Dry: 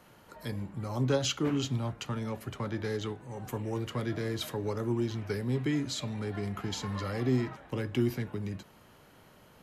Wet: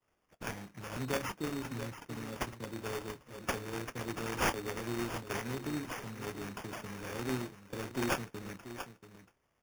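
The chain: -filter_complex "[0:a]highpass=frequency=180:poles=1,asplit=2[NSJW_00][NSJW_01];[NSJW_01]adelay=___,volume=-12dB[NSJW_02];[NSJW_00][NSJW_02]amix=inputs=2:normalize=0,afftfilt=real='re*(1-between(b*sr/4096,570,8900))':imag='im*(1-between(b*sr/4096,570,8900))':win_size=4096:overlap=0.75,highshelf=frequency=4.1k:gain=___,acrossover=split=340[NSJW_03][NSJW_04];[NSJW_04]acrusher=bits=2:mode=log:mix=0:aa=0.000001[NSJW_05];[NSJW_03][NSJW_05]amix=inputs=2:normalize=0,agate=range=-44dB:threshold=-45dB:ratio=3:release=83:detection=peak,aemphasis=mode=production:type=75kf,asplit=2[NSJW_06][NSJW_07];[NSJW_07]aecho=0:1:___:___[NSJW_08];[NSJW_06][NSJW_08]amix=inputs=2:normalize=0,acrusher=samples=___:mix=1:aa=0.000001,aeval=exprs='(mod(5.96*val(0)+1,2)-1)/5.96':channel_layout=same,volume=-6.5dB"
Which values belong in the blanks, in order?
26, 11.5, 683, 0.266, 11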